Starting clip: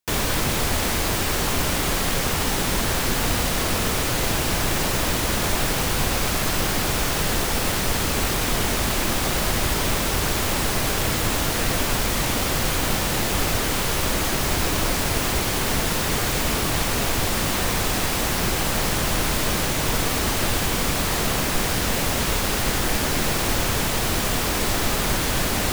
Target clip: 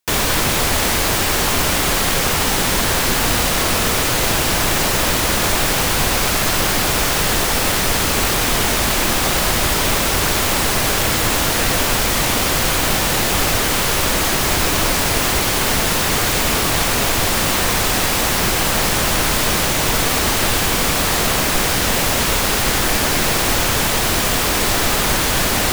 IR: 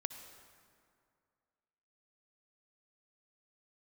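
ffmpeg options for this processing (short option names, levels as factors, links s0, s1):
-filter_complex "[0:a]asplit=2[s0][s1];[1:a]atrim=start_sample=2205,lowshelf=f=290:g=-11[s2];[s1][s2]afir=irnorm=-1:irlink=0,volume=1.41[s3];[s0][s3]amix=inputs=2:normalize=0"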